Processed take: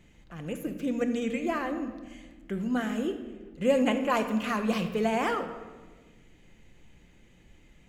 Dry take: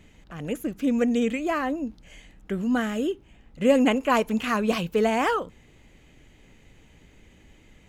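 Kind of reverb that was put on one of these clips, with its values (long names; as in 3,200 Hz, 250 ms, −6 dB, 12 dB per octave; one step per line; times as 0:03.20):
rectangular room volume 1,100 cubic metres, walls mixed, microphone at 0.85 metres
level −5.5 dB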